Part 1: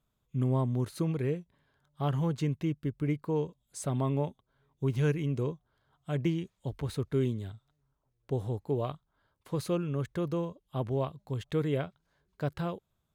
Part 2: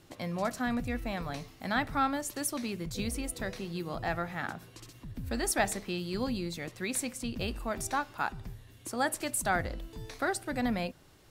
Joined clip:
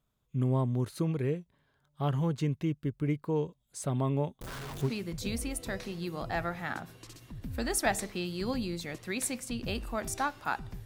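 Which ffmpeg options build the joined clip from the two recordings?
-filter_complex "[0:a]asettb=1/sr,asplit=3[a][b][c];[a]atrim=end=4.414[d];[b]atrim=start=4.41:end=4.91,asetpts=PTS-STARTPTS,afade=t=in:d=0.004:c=qsin,afade=t=out:st=0.496:d=0.004:c=qsin,aeval=exprs='val(0)+0.5*0.0188*sgn(val(0))':c=same[e];[c]atrim=start=4.906[f];[d][e]acrossfade=d=0.004:c1=hsin:c2=qsin[g];[g][f]acrossfade=d=0.004:c1=qsin:c2=hsin,apad=whole_dur=10.85,atrim=end=10.85,atrim=end=4.91,asetpts=PTS-STARTPTS[h];[1:a]atrim=start=2.58:end=8.58,asetpts=PTS-STARTPTS[i];[h][i]acrossfade=d=0.06:c1=tri:c2=tri"

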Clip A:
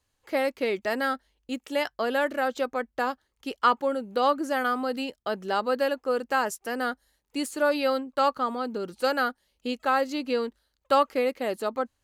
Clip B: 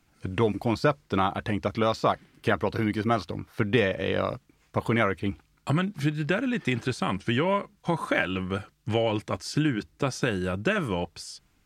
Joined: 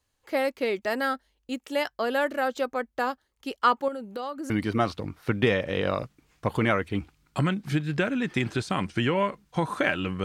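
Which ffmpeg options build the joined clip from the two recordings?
-filter_complex "[0:a]asettb=1/sr,asplit=3[a][b][c];[a]atrim=end=3.884[d];[b]atrim=start=3.88:end=4.5,asetpts=PTS-STARTPTS,afade=t=in:d=0.004:c=qsin,afade=t=out:st=0.616:d=0.004:c=qsin,acompressor=threshold=-31dB:ratio=4:attack=3.2:release=140:knee=1:detection=peak[e];[c]atrim=start=4.496[f];[d][e]acrossfade=d=0.004:c1=hsin:c2=qsin[g];[g][f]acrossfade=d=0.004:c1=qsin:c2=hsin,apad=whole_dur=10.24,atrim=end=10.24,atrim=end=4.502[h];[1:a]atrim=start=2.808:end=8.55[i];[h][i]acrossfade=d=0.004:c1=hsin:c2=hsin"

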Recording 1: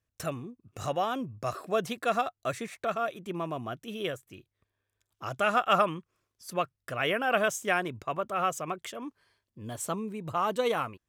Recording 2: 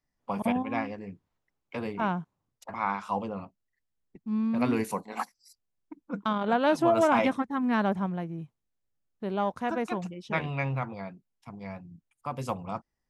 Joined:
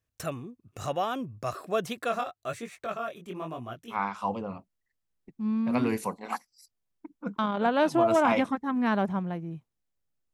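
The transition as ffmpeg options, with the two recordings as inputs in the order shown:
-filter_complex "[0:a]asplit=3[a][b][c];[a]afade=t=out:st=2.07:d=0.02[d];[b]flanger=delay=16.5:depth=7.5:speed=1.1,afade=t=in:st=2.07:d=0.02,afade=t=out:st=3.99:d=0.02[e];[c]afade=t=in:st=3.99:d=0.02[f];[d][e][f]amix=inputs=3:normalize=0,apad=whole_dur=10.33,atrim=end=10.33,atrim=end=3.99,asetpts=PTS-STARTPTS[g];[1:a]atrim=start=2.76:end=9.2,asetpts=PTS-STARTPTS[h];[g][h]acrossfade=d=0.1:c1=tri:c2=tri"

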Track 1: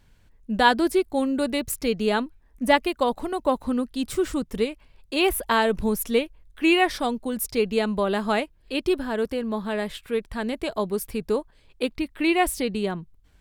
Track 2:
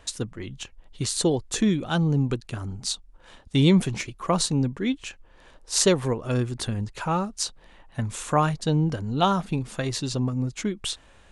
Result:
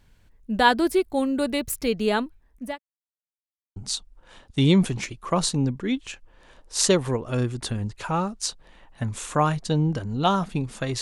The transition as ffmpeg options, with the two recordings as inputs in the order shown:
-filter_complex "[0:a]apad=whole_dur=11.01,atrim=end=11.01,asplit=2[a][b];[a]atrim=end=2.79,asetpts=PTS-STARTPTS,afade=t=out:st=2.22:d=0.57:c=qsin[c];[b]atrim=start=2.79:end=3.76,asetpts=PTS-STARTPTS,volume=0[d];[1:a]atrim=start=2.73:end=9.98,asetpts=PTS-STARTPTS,afade=t=in:d=0.004:c=hsin[e];[c][d][e]concat=n=3:v=0:a=1"

